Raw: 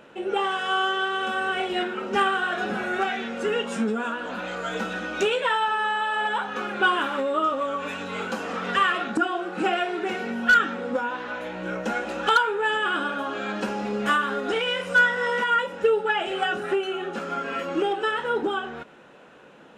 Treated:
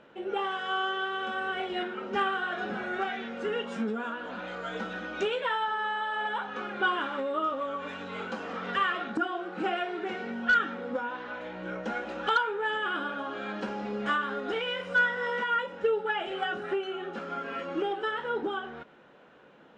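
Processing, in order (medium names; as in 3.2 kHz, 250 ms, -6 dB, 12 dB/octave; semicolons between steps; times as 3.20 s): low-pass 4.6 kHz 12 dB/octave; band-stop 2.6 kHz, Q 18; trim -6 dB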